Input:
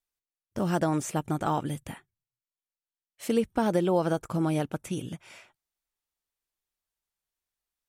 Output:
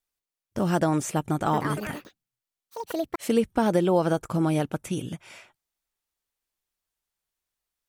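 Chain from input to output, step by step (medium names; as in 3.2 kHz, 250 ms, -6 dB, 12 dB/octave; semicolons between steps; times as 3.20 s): 1.23–3.60 s: ever faster or slower copies 251 ms, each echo +6 st, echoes 2, each echo -6 dB; trim +3 dB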